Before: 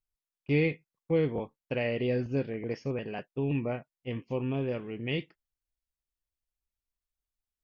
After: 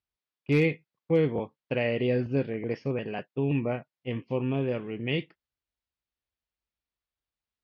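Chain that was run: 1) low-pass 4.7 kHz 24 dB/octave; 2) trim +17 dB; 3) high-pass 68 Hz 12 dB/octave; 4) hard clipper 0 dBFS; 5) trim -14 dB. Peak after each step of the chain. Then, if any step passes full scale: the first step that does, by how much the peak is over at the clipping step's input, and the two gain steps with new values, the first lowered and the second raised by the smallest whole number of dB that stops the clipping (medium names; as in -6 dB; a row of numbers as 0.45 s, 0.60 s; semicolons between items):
-15.0 dBFS, +2.0 dBFS, +3.5 dBFS, 0.0 dBFS, -14.0 dBFS; step 2, 3.5 dB; step 2 +13 dB, step 5 -10 dB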